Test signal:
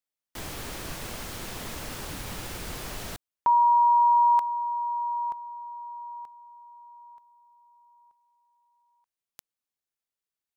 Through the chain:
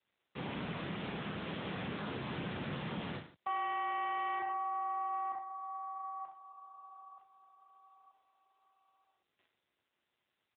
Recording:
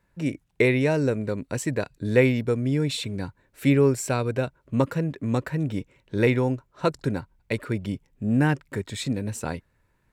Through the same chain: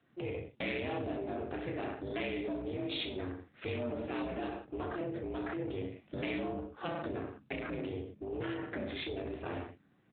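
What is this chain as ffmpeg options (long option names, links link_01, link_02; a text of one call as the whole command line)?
ffmpeg -i in.wav -filter_complex "[0:a]aeval=exprs='val(0)*sin(2*PI*180*n/s)':channel_layout=same,aeval=exprs='0.398*(cos(1*acos(clip(val(0)/0.398,-1,1)))-cos(1*PI/2))+0.0562*(cos(4*acos(clip(val(0)/0.398,-1,1)))-cos(4*PI/2))+0.0398*(cos(5*acos(clip(val(0)/0.398,-1,1)))-cos(5*PI/2))':channel_layout=same,aecho=1:1:30|63|99.3|139.2|183.2:0.631|0.398|0.251|0.158|0.1,acrossover=split=3100[link_01][link_02];[link_01]acompressor=threshold=-31dB:ratio=8:attack=2.1:release=21:knee=1:detection=peak[link_03];[link_03][link_02]amix=inputs=2:normalize=0,volume=-3dB" -ar 8000 -c:a libopencore_amrnb -b:a 10200 out.amr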